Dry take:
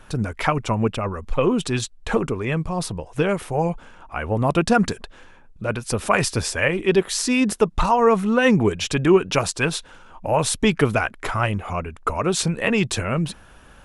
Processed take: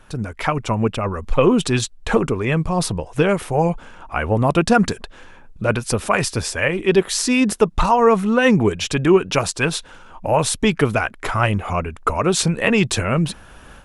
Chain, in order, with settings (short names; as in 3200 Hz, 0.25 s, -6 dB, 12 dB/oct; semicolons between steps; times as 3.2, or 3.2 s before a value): AGC; gain -2 dB